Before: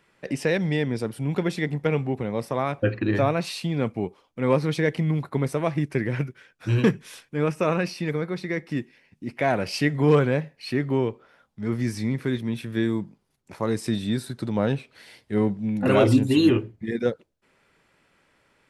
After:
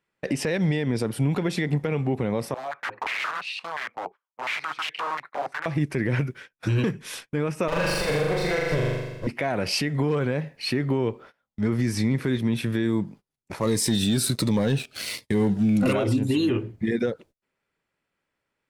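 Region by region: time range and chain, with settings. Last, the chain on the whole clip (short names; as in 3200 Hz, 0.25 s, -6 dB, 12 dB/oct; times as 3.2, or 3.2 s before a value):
2.54–5.66 wrapped overs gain 22 dB + stepped band-pass 5.7 Hz 750–2700 Hz
7.68–9.27 minimum comb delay 1.9 ms + flutter echo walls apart 7 m, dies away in 1.1 s
13.61–15.93 high shelf 2900 Hz +9 dB + sample leveller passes 2 + cascading phaser falling 1.3 Hz
whole clip: gate -48 dBFS, range -24 dB; compressor, threshold -25 dBFS; limiter -22.5 dBFS; gain +7.5 dB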